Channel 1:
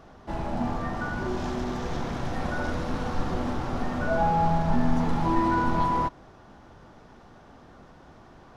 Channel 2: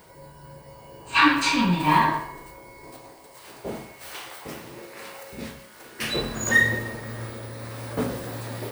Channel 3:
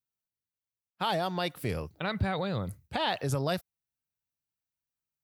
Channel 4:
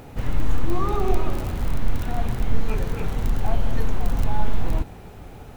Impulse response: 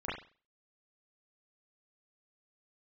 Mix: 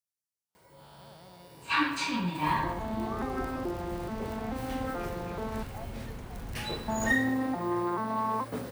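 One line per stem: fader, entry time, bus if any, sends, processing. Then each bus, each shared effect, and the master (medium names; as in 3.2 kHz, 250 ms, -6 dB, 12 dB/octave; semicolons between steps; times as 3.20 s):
+2.0 dB, 2.35 s, muted 5.63–6.88 s, no send, vocoder on a broken chord major triad, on F3, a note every 432 ms; peak limiter -22 dBFS, peak gain reduction 7.5 dB; Bessel high-pass 340 Hz, order 8
-9.5 dB, 0.55 s, no send, none
-7.5 dB, 0.00 s, no send, spectral blur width 362 ms; high-order bell 7.8 kHz +11 dB; compression 3:1, threshold -47 dBFS, peak gain reduction 13 dB
-12.5 dB, 2.30 s, no send, none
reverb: none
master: high-pass 52 Hz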